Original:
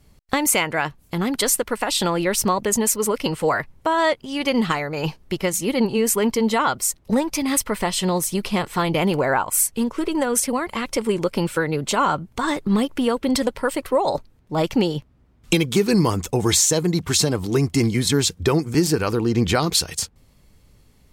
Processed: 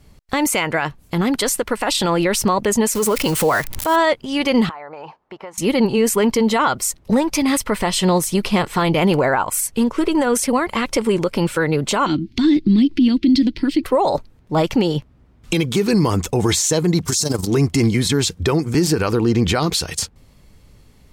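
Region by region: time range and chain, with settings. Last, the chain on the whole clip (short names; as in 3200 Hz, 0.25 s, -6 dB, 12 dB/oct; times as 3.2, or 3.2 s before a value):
2.95–3.96 switching spikes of -24.5 dBFS + transient shaper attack -5 dB, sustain 0 dB + backwards sustainer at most 53 dB/s
4.69–5.58 band-pass 910 Hz, Q 2 + compressor, threshold -35 dBFS
12.06–13.84 EQ curve 170 Hz 0 dB, 330 Hz +12 dB, 470 Hz -20 dB, 710 Hz -18 dB, 1200 Hz -22 dB, 2000 Hz -6 dB, 4600 Hz +2 dB, 8000 Hz -19 dB + mismatched tape noise reduction encoder only
17.05–17.47 G.711 law mismatch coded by mu + resonant high shelf 4100 Hz +11.5 dB, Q 1.5 + AM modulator 23 Hz, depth 55%
whole clip: limiter -13.5 dBFS; high shelf 8200 Hz -5 dB; gain +5.5 dB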